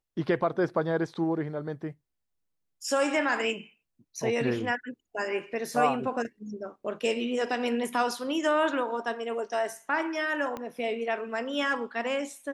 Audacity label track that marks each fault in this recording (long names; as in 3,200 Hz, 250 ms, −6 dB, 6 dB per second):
10.570000	10.570000	click −22 dBFS